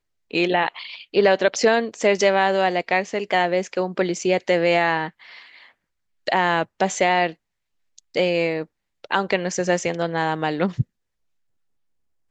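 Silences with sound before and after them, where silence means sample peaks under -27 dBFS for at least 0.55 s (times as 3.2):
5.08–6.27
7.3–8.16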